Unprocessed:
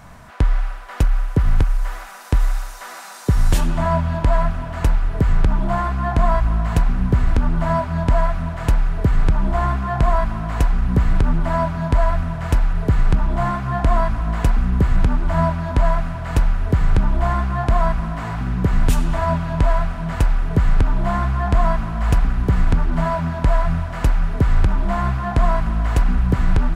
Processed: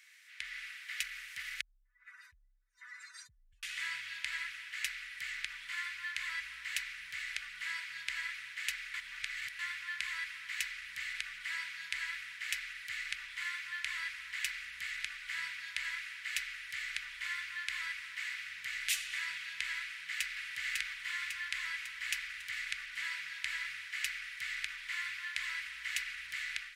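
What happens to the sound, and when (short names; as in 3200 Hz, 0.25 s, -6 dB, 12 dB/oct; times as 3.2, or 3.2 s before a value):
1.61–3.63 spectral contrast raised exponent 2.6
8.94–9.59 reverse
19.81–20.38 echo throw 0.55 s, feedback 55%, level -2.5 dB
whole clip: elliptic high-pass 2000 Hz, stop band 60 dB; high shelf 2900 Hz -10 dB; AGC gain up to 6.5 dB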